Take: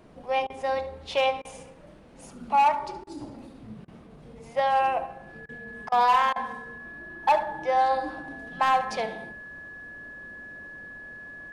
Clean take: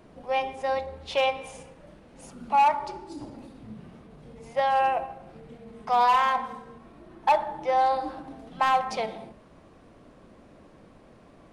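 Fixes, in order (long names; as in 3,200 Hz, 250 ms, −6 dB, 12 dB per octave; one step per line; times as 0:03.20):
notch filter 1,700 Hz, Q 30
repair the gap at 0:00.47/0:01.42/0:03.04/0:03.85/0:05.46/0:05.89/0:06.33, 28 ms
echo removal 72 ms −15 dB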